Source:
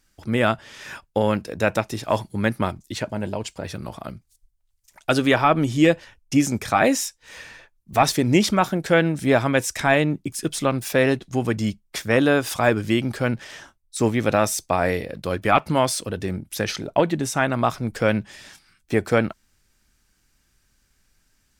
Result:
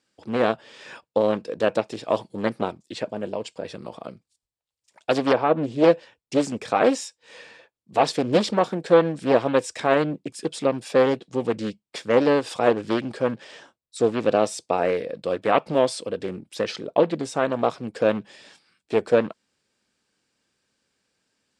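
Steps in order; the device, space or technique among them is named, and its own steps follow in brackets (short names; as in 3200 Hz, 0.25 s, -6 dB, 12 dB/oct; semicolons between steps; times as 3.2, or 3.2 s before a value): 5.33–5.84 high shelf 2100 Hz -9.5 dB; full-range speaker at full volume (Doppler distortion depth 0.71 ms; speaker cabinet 200–8000 Hz, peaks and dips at 490 Hz +8 dB, 1400 Hz -4 dB, 2000 Hz -4 dB, 6200 Hz -8 dB); gain -2.5 dB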